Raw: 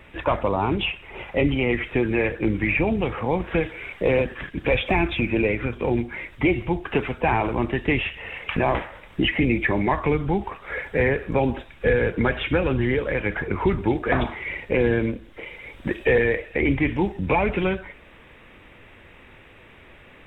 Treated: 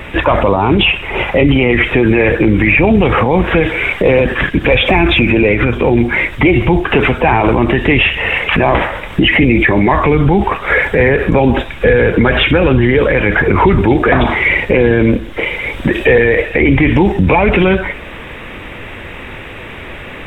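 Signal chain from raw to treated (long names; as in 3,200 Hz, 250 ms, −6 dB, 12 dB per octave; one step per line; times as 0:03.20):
boost into a limiter +21 dB
level −1 dB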